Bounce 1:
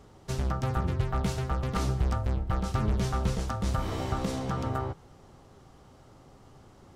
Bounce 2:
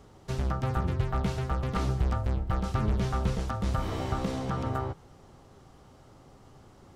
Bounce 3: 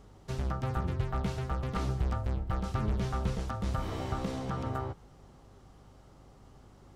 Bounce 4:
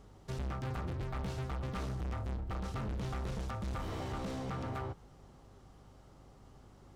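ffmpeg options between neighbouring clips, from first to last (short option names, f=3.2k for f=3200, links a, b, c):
-filter_complex "[0:a]acrossover=split=4200[a][b];[b]acompressor=threshold=-50dB:ratio=4:attack=1:release=60[c];[a][c]amix=inputs=2:normalize=0"
-af "aeval=exprs='val(0)+0.002*(sin(2*PI*50*n/s)+sin(2*PI*2*50*n/s)/2+sin(2*PI*3*50*n/s)/3+sin(2*PI*4*50*n/s)/4+sin(2*PI*5*50*n/s)/5)':c=same,volume=-3.5dB"
-af "asoftclip=type=hard:threshold=-33dB,volume=-2dB"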